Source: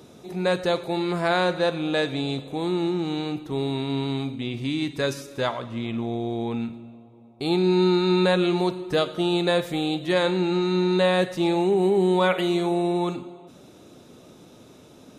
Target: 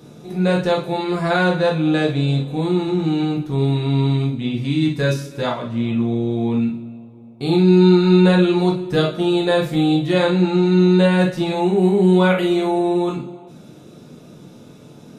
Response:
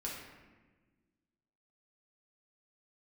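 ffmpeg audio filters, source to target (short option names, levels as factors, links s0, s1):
-filter_complex "[0:a]equalizer=f=150:t=o:w=0.58:g=13[s0];[1:a]atrim=start_sample=2205,atrim=end_sample=3087[s1];[s0][s1]afir=irnorm=-1:irlink=0,volume=1.58"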